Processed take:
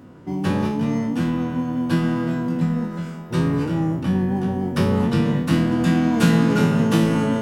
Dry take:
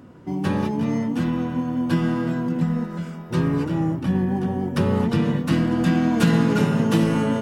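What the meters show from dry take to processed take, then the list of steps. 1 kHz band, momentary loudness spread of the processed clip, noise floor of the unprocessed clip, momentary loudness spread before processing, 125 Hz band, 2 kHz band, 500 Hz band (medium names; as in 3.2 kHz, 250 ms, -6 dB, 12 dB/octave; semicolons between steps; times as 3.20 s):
+1.0 dB, 7 LU, -34 dBFS, 6 LU, +1.5 dB, +1.5 dB, +1.0 dB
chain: spectral sustain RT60 0.51 s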